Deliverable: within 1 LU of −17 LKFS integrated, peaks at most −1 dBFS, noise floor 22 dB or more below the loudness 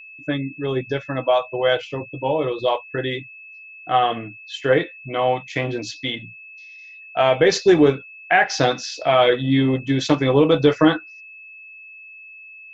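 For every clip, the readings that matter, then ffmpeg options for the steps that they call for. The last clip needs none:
interfering tone 2,600 Hz; level of the tone −39 dBFS; integrated loudness −20.0 LKFS; sample peak −2.0 dBFS; target loudness −17.0 LKFS
→ -af "bandreject=frequency=2600:width=30"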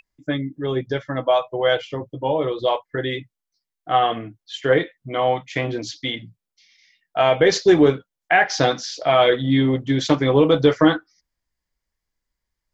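interfering tone none found; integrated loudness −20.0 LKFS; sample peak −2.0 dBFS; target loudness −17.0 LKFS
→ -af "volume=3dB,alimiter=limit=-1dB:level=0:latency=1"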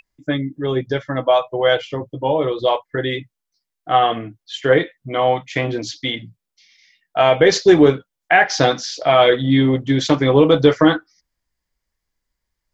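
integrated loudness −17.0 LKFS; sample peak −1.0 dBFS; background noise floor −81 dBFS

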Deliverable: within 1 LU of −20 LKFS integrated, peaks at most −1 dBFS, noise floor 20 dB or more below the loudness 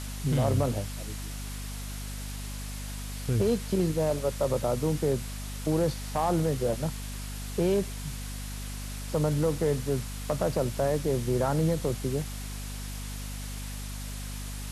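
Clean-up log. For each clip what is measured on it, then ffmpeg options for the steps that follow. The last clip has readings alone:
mains hum 50 Hz; hum harmonics up to 250 Hz; level of the hum −35 dBFS; background noise floor −37 dBFS; target noise floor −51 dBFS; integrated loudness −30.5 LKFS; sample peak −15.5 dBFS; target loudness −20.0 LKFS
→ -af "bandreject=frequency=50:width_type=h:width=4,bandreject=frequency=100:width_type=h:width=4,bandreject=frequency=150:width_type=h:width=4,bandreject=frequency=200:width_type=h:width=4,bandreject=frequency=250:width_type=h:width=4"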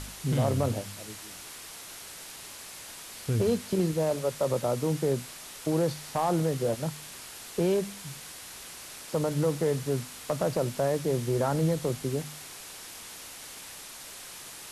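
mains hum none found; background noise floor −44 dBFS; target noise floor −50 dBFS
→ -af "afftdn=noise_reduction=6:noise_floor=-44"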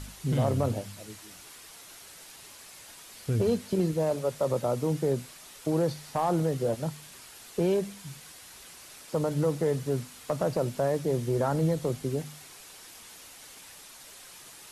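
background noise floor −49 dBFS; integrated loudness −29.0 LKFS; sample peak −15.0 dBFS; target loudness −20.0 LKFS
→ -af "volume=9dB"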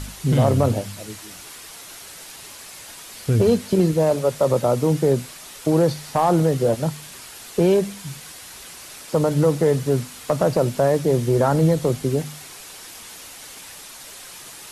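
integrated loudness −20.0 LKFS; sample peak −6.0 dBFS; background noise floor −40 dBFS

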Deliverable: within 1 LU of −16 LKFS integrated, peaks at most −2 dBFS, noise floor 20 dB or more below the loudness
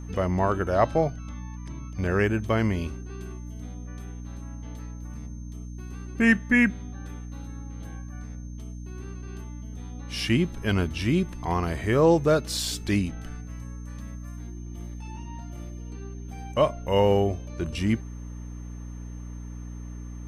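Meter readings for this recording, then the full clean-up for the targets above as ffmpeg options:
mains hum 60 Hz; hum harmonics up to 300 Hz; level of the hum −35 dBFS; interfering tone 6,300 Hz; level of the tone −56 dBFS; integrated loudness −25.0 LKFS; sample peak −7.5 dBFS; target loudness −16.0 LKFS
→ -af "bandreject=frequency=60:width_type=h:width=6,bandreject=frequency=120:width_type=h:width=6,bandreject=frequency=180:width_type=h:width=6,bandreject=frequency=240:width_type=h:width=6,bandreject=frequency=300:width_type=h:width=6"
-af "bandreject=frequency=6300:width=30"
-af "volume=9dB,alimiter=limit=-2dB:level=0:latency=1"

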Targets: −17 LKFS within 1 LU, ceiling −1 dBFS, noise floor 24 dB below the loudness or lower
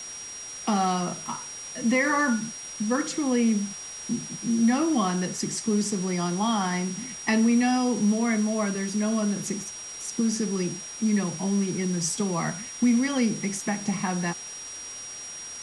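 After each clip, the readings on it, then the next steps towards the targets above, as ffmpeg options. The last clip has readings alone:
interfering tone 5,700 Hz; level of the tone −37 dBFS; background noise floor −39 dBFS; target noise floor −51 dBFS; integrated loudness −26.5 LKFS; sample peak −12.5 dBFS; target loudness −17.0 LKFS
→ -af "bandreject=frequency=5700:width=30"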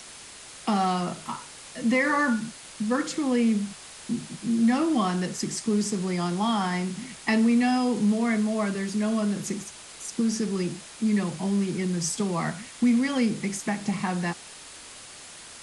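interfering tone none found; background noise floor −45 dBFS; target noise floor −51 dBFS
→ -af "afftdn=noise_reduction=6:noise_floor=-45"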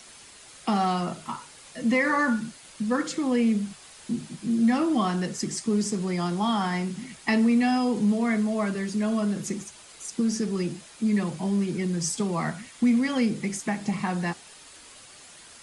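background noise floor −49 dBFS; target noise floor −51 dBFS
→ -af "afftdn=noise_reduction=6:noise_floor=-49"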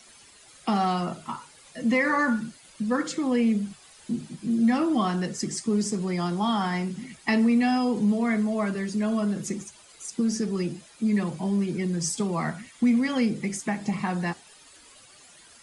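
background noise floor −53 dBFS; integrated loudness −26.5 LKFS; sample peak −13.0 dBFS; target loudness −17.0 LKFS
→ -af "volume=9.5dB"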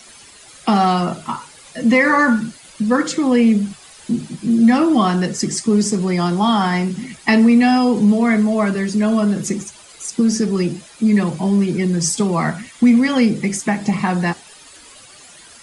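integrated loudness −17.0 LKFS; sample peak −3.5 dBFS; background noise floor −43 dBFS

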